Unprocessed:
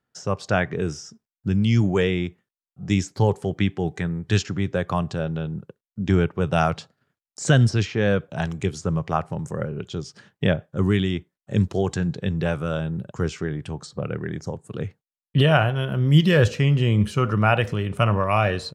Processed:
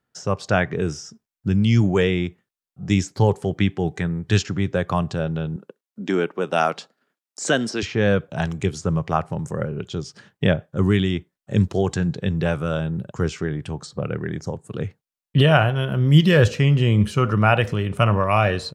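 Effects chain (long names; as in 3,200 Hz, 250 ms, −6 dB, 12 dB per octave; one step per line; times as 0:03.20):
0:05.56–0:07.83: high-pass filter 230 Hz 24 dB per octave
level +2 dB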